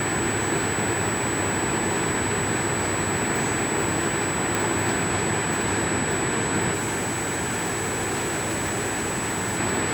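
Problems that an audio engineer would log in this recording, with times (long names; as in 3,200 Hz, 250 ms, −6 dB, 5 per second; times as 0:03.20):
whistle 7,900 Hz −29 dBFS
0:04.55: click
0:06.73–0:09.60: clipping −23 dBFS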